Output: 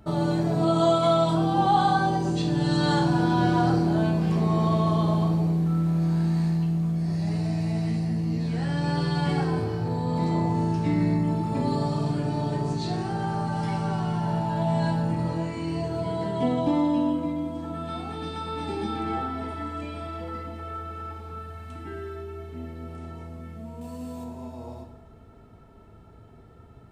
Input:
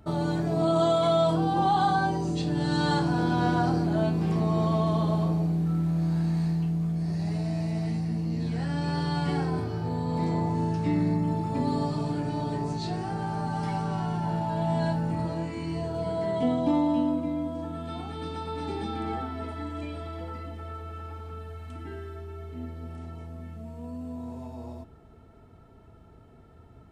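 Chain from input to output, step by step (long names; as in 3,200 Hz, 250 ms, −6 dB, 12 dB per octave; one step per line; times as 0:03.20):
0:23.81–0:24.24: high-shelf EQ 2,400 Hz +12 dB
on a send: convolution reverb, pre-delay 3 ms, DRR 4.5 dB
on the sum: level +1.5 dB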